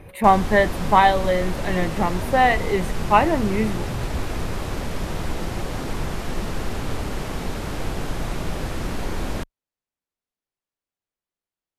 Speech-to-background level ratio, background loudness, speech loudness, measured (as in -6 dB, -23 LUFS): 9.5 dB, -29.5 LUFS, -20.0 LUFS